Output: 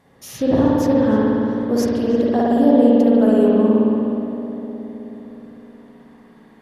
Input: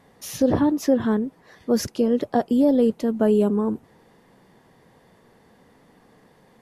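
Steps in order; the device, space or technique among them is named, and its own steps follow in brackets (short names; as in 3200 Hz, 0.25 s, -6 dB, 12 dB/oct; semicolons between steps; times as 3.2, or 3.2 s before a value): dub delay into a spring reverb (darkening echo 0.313 s, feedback 66%, low-pass 1600 Hz, level -9 dB; spring tank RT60 2.4 s, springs 55 ms, chirp 20 ms, DRR -5.5 dB); gain -2 dB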